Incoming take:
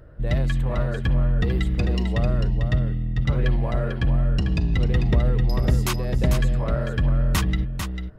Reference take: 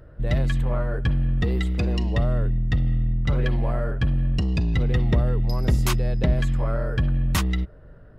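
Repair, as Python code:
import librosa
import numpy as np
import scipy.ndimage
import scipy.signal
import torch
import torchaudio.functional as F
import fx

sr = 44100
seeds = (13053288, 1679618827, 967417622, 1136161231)

y = fx.fix_echo_inverse(x, sr, delay_ms=446, level_db=-6.5)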